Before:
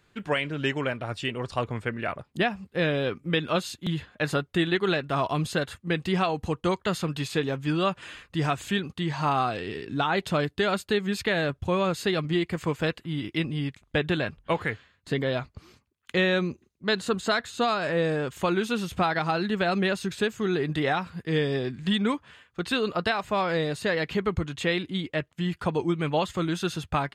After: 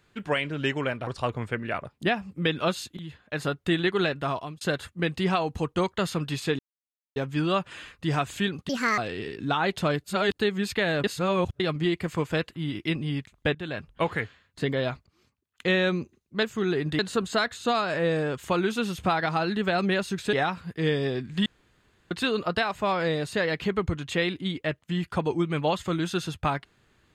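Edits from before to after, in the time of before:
0:01.07–0:01.41: remove
0:02.68–0:03.22: remove
0:03.85–0:04.54: fade in, from −13.5 dB
0:05.07–0:05.49: fade out
0:07.47: splice in silence 0.57 s
0:09.00–0:09.47: play speed 163%
0:10.53–0:10.86: reverse
0:11.53–0:12.09: reverse
0:14.04–0:14.41: fade in, from −17 dB
0:15.56–0:16.21: fade in, from −23.5 dB
0:20.26–0:20.82: move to 0:16.92
0:21.95–0:22.60: fill with room tone

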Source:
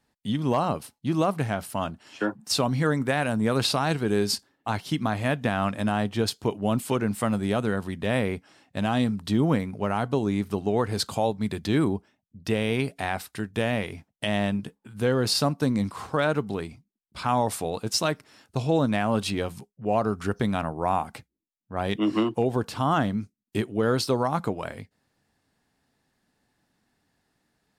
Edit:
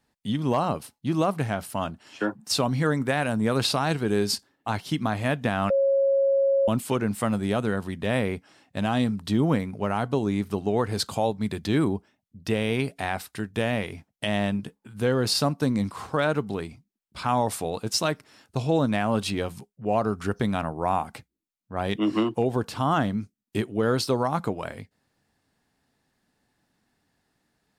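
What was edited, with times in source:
0:05.70–0:06.68: beep over 548 Hz −18 dBFS

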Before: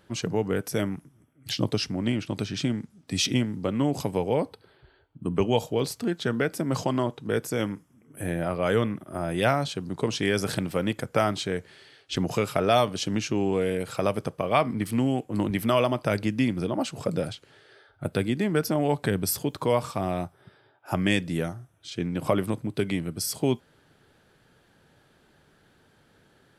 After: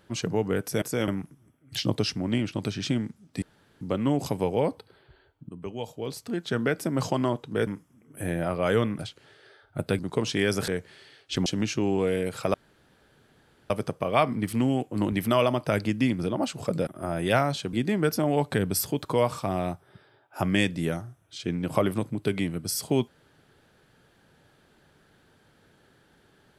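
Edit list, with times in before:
0:03.16–0:03.55: fill with room tone
0:05.23–0:06.33: fade in quadratic, from −13.5 dB
0:07.41–0:07.67: move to 0:00.82
0:08.99–0:09.85: swap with 0:17.25–0:18.25
0:10.54–0:11.48: remove
0:12.26–0:13.00: remove
0:14.08: splice in room tone 1.16 s

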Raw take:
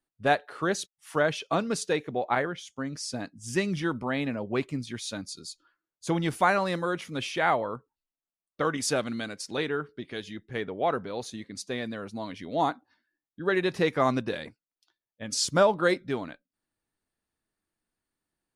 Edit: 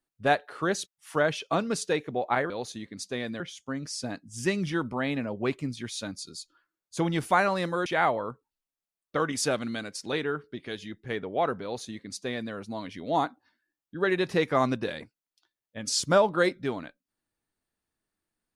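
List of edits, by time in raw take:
0:06.96–0:07.31: remove
0:11.08–0:11.98: duplicate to 0:02.50

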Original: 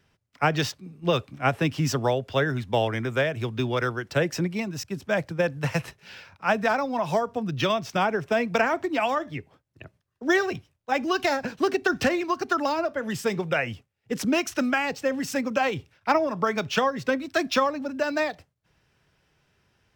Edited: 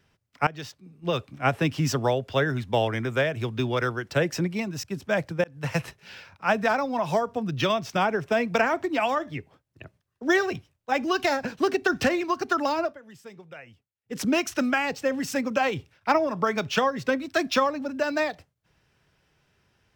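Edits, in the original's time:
0:00.47–0:01.49: fade in, from −18 dB
0:05.44–0:05.75: fade in
0:12.85–0:14.20: duck −18.5 dB, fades 0.13 s

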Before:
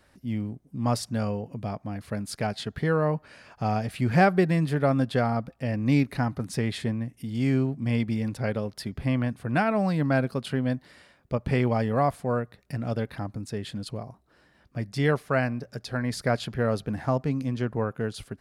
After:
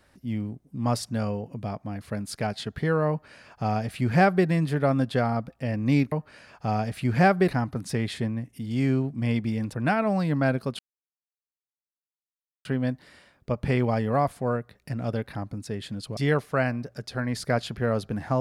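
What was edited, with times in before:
0:03.09–0:04.45: duplicate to 0:06.12
0:08.38–0:09.43: remove
0:10.48: splice in silence 1.86 s
0:14.00–0:14.94: remove

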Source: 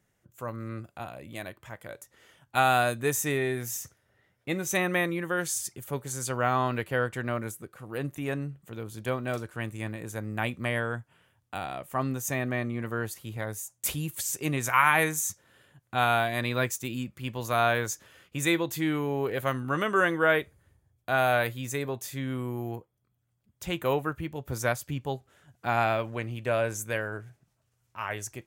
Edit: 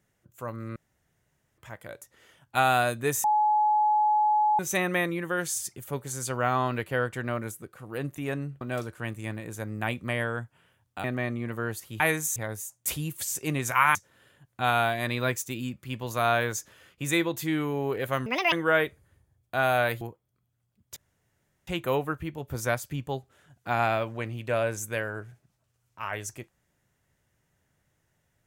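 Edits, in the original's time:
0:00.76–0:01.58: fill with room tone
0:03.24–0:04.59: beep over 848 Hz −19.5 dBFS
0:08.61–0:09.17: remove
0:11.60–0:12.38: remove
0:14.93–0:15.29: move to 0:13.34
0:19.60–0:20.07: play speed 179%
0:21.56–0:22.70: remove
0:23.65: splice in room tone 0.71 s

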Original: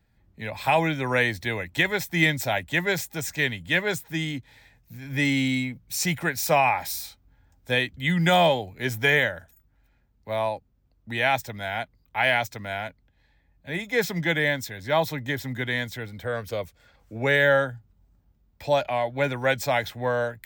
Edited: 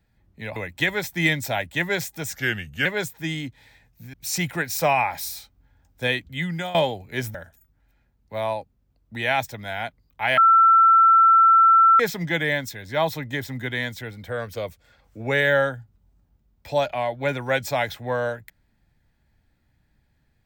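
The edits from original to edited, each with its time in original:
0:00.56–0:01.53: remove
0:03.32–0:03.76: play speed 87%
0:05.04–0:05.81: remove
0:07.90–0:08.42: fade out, to −18 dB
0:09.02–0:09.30: remove
0:12.33–0:13.95: beep over 1,340 Hz −11 dBFS

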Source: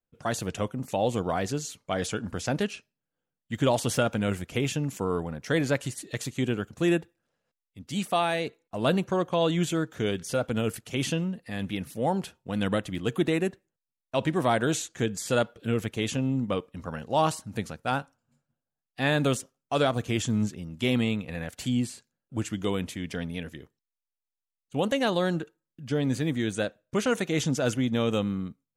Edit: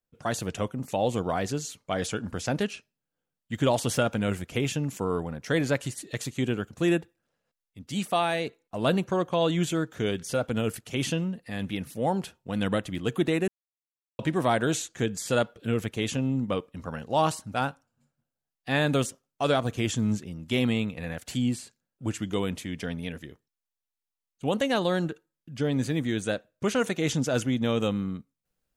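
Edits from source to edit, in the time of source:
0:13.48–0:14.19: silence
0:17.54–0:17.85: remove

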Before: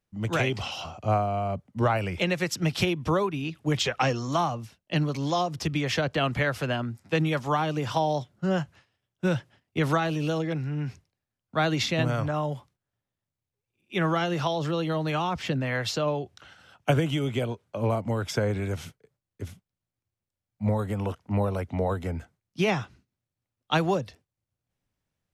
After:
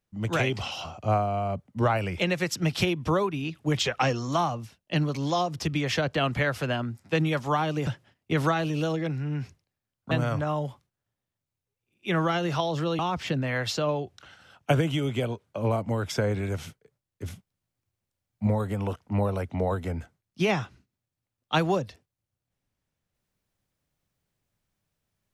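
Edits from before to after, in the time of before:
0:07.87–0:09.33: remove
0:11.57–0:11.98: remove
0:14.86–0:15.18: remove
0:19.45–0:20.66: clip gain +4 dB

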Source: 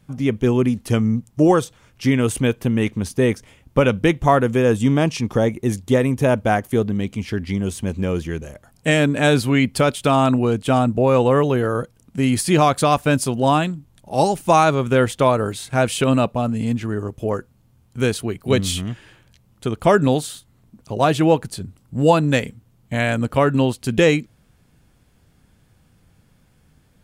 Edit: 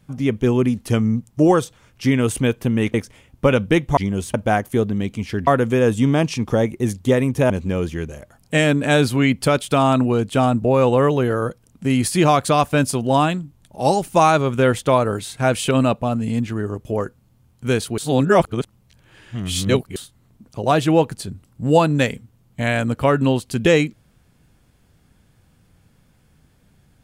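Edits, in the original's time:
0:02.94–0:03.27: remove
0:04.30–0:06.33: swap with 0:07.46–0:07.83
0:18.31–0:20.29: reverse

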